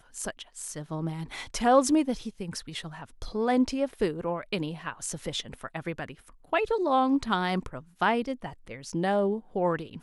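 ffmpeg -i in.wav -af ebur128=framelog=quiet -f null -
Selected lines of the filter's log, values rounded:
Integrated loudness:
  I:         -29.0 LUFS
  Threshold: -39.3 LUFS
Loudness range:
  LRA:         3.3 LU
  Threshold: -49.3 LUFS
  LRA low:   -31.2 LUFS
  LRA high:  -27.8 LUFS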